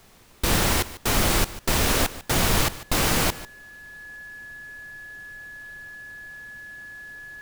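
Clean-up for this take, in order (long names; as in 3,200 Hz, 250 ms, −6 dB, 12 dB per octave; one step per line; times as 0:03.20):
notch filter 1,700 Hz, Q 30
downward expander −38 dBFS, range −21 dB
echo removal 147 ms −16.5 dB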